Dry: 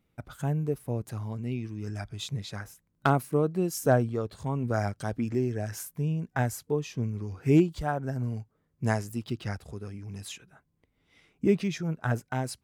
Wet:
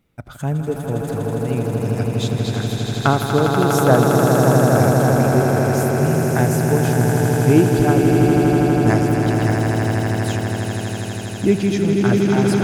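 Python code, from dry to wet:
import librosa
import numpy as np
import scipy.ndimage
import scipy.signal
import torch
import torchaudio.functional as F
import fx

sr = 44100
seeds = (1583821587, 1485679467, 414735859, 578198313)

y = fx.echo_swell(x, sr, ms=81, loudest=8, wet_db=-6.0)
y = F.gain(torch.from_numpy(y), 7.0).numpy()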